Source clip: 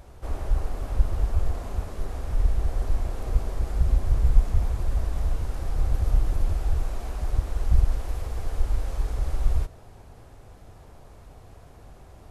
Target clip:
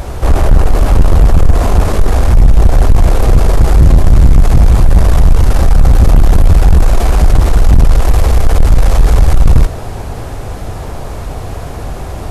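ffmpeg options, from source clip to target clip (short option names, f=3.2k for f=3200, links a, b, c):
-af "apsyclip=20.5dB,acontrast=61,atempo=1,volume=-1dB"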